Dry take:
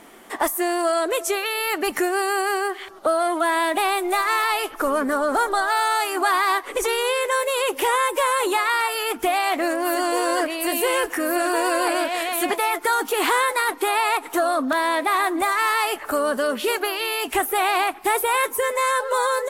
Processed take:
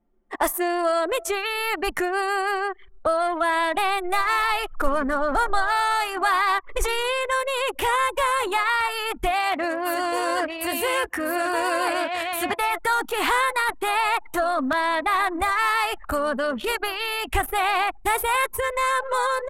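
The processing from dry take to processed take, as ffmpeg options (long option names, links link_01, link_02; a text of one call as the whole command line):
ffmpeg -i in.wav -filter_complex "[0:a]asettb=1/sr,asplit=3[link_01][link_02][link_03];[link_01]atrim=end=9.314[link_04];[link_02]atrim=start=9.31:end=12.61,asetpts=PTS-STARTPTS,afade=type=in:duration=0.004:curve=qsin,afade=type=out:start_time=3.296:duration=0.004:curve=qsin,highpass=frequency=67:width=0.5412,highpass=frequency=67:width=1.3066[link_05];[link_03]atrim=start=12.606[link_06];[link_04][link_05]acrossfade=duration=0.004:curve1=hsin:curve2=qsin[link_07];[link_07][link_06]acrossfade=duration=0.004:curve1=qsin:curve2=hsin,asubboost=boost=10:cutoff=110,anlmdn=100,adynamicequalizer=threshold=0.0112:dfrequency=4500:dqfactor=0.7:tfrequency=4500:tqfactor=0.7:attack=5:release=100:ratio=0.375:range=2.5:mode=cutabove:tftype=highshelf" out.wav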